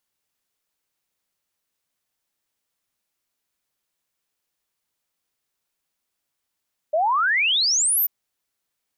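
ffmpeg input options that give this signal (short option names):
-f lavfi -i "aevalsrc='0.141*clip(min(t,1.14-t)/0.01,0,1)*sin(2*PI*590*1.14/log(15000/590)*(exp(log(15000/590)*t/1.14)-1))':d=1.14:s=44100"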